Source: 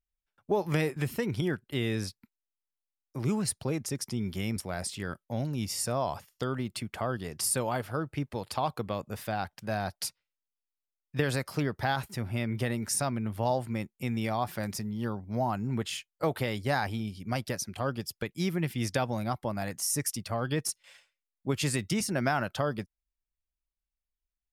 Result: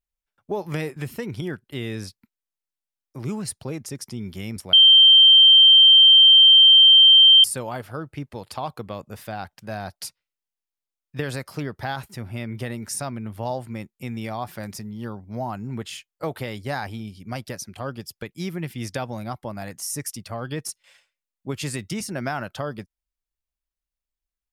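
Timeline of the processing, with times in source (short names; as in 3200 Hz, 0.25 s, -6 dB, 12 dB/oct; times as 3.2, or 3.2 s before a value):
4.73–7.44 bleep 3140 Hz -8 dBFS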